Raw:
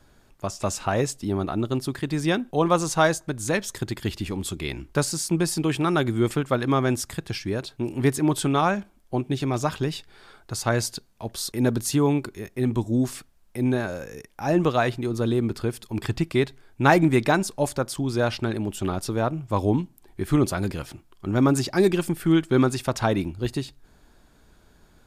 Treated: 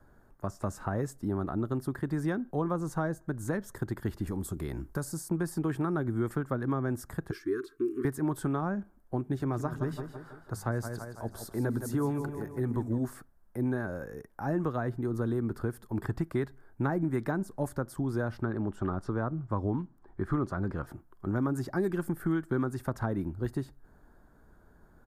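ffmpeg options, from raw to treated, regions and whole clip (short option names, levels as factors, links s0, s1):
-filter_complex "[0:a]asettb=1/sr,asplit=3[s0][s1][s2];[s0]atrim=end=4.274[s3];[s1]atrim=start=4.27:end=5.29,asetpts=PTS-STARTPTS,afade=t=in:d=0.004:c=qsin,afade=t=out:st=1.016:d=0.004:c=qsin,acompressor=threshold=0.0355:ratio=2:attack=3.2:release=140:knee=1:detection=peak,bass=f=250:g=2,treble=f=4000:g=9[s4];[s2]atrim=start=5.286[s5];[s3][s4]acrossfade=d=0.004:c1=hsin:c2=qsin[s6];[s6][s5]acrossfade=d=0.004:c1=qsin:c2=hsin,asettb=1/sr,asplit=3[s7][s8][s9];[s7]atrim=end=7.314[s10];[s8]atrim=start=7.31:end=8.05,asetpts=PTS-STARTPTS,afade=t=in:d=0.004:c=qsin,afade=t=out:st=0.736:d=0.004:c=qsin,asuperstop=centerf=680:order=20:qfactor=1.1,lowshelf=f=240:t=q:w=3:g=-13.5[s11];[s9]atrim=start=8.046[s12];[s10][s11]acrossfade=d=0.004:c1=hsin:c2=qsin[s13];[s13][s12]acrossfade=d=0.004:c1=qsin:c2=hsin,asettb=1/sr,asplit=3[s14][s15][s16];[s14]atrim=end=9.364[s17];[s15]atrim=start=9.36:end=13.05,asetpts=PTS-STARTPTS,afade=t=in:d=0.004:c=qsin,afade=t=out:st=3.686:d=0.004:c=qsin,bandreject=f=50:t=h:w=6,bandreject=f=100:t=h:w=6,bandreject=f=150:t=h:w=6,bandreject=f=200:t=h:w=6,bandreject=f=250:t=h:w=6,aecho=1:1:165|330|495|660|825:0.282|0.135|0.0649|0.0312|0.015,atrim=end_sample=162729[s18];[s16]atrim=start=13.046[s19];[s17][s18]acrossfade=d=0.004:c1=hsin:c2=qsin[s20];[s20][s19]acrossfade=d=0.004:c1=qsin:c2=hsin,asettb=1/sr,asplit=3[s21][s22][s23];[s21]atrim=end=18.424[s24];[s22]atrim=start=18.42:end=20.87,asetpts=PTS-STARTPTS,afade=t=in:d=0.004:c=qsin,afade=t=out:st=2.446:d=0.004:c=qsin,lowpass=5200,equalizer=f=1200:t=o:w=0.61:g=5[s25];[s23]atrim=start=20.866[s26];[s24][s25]acrossfade=d=0.004:c1=hsin:c2=qsin[s27];[s27][s26]acrossfade=d=0.004:c1=qsin:c2=hsin,firequalizer=gain_entry='entry(1600,0);entry(2500,-20);entry(13000,-5)':delay=0.05:min_phase=1,acrossover=split=390|1100[s28][s29][s30];[s28]acompressor=threshold=0.0501:ratio=4[s31];[s29]acompressor=threshold=0.0126:ratio=4[s32];[s30]acompressor=threshold=0.0126:ratio=4[s33];[s31][s32][s33]amix=inputs=3:normalize=0,volume=0.75"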